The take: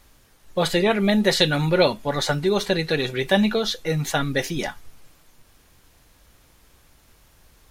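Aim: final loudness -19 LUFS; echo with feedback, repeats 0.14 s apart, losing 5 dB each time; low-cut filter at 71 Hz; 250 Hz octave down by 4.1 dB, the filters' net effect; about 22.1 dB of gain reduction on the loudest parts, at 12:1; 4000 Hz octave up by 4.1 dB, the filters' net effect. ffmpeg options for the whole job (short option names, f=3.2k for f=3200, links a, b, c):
-af "highpass=71,equalizer=f=250:t=o:g=-6,equalizer=f=4k:t=o:g=4.5,acompressor=threshold=-35dB:ratio=12,aecho=1:1:140|280|420|560|700|840|980:0.562|0.315|0.176|0.0988|0.0553|0.031|0.0173,volume=18dB"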